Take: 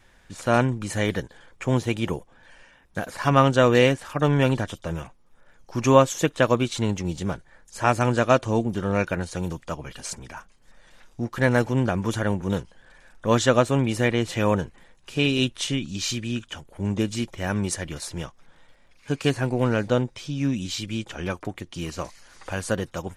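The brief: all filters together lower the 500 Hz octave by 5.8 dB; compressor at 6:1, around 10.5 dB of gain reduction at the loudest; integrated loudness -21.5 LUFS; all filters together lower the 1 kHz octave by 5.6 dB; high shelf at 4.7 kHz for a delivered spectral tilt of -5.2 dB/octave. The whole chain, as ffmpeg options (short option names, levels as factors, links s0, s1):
-af "equalizer=f=500:t=o:g=-5.5,equalizer=f=1000:t=o:g=-5.5,highshelf=f=4700:g=-4.5,acompressor=threshold=0.0447:ratio=6,volume=3.98"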